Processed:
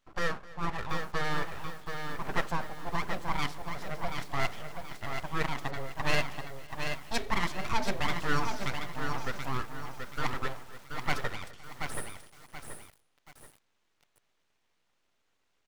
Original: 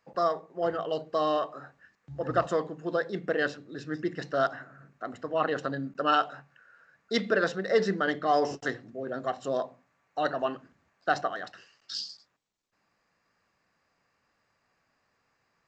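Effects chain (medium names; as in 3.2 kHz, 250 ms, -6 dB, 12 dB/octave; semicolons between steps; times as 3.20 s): full-wave rectifier; feedback delay 257 ms, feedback 47%, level -20 dB; bit-crushed delay 730 ms, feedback 35%, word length 8-bit, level -6 dB; trim -1.5 dB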